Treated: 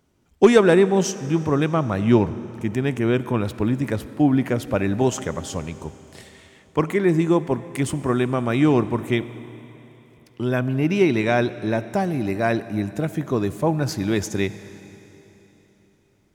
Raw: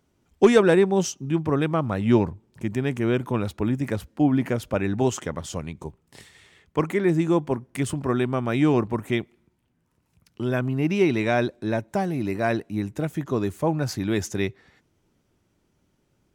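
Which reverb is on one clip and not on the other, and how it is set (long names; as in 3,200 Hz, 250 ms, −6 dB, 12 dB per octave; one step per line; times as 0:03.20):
comb and all-pass reverb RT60 3.5 s, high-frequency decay 1×, pre-delay 15 ms, DRR 14.5 dB
level +2.5 dB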